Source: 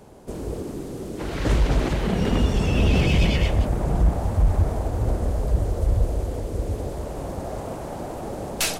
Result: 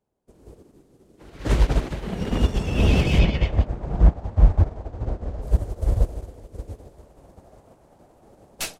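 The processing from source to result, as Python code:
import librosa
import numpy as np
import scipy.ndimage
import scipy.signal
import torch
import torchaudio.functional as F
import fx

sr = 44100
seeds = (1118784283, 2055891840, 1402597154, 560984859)

y = fx.air_absorb(x, sr, metres=130.0, at=(3.18, 5.41), fade=0.02)
y = fx.upward_expand(y, sr, threshold_db=-39.0, expansion=2.5)
y = y * librosa.db_to_amplitude(6.5)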